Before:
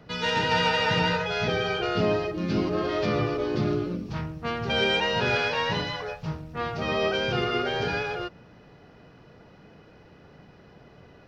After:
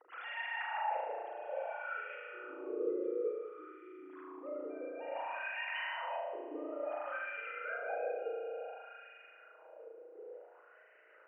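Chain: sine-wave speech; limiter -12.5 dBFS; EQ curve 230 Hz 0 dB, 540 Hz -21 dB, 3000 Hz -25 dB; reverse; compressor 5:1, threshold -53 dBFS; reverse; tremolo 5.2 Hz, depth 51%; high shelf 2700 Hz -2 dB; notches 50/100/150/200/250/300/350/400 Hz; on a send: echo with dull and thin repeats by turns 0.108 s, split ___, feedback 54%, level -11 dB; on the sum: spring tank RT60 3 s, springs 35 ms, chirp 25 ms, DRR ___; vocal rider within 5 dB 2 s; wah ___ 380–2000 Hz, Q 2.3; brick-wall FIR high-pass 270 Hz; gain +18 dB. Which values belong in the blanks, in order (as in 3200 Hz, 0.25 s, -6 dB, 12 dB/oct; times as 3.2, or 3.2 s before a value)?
2300 Hz, -5 dB, 0.57 Hz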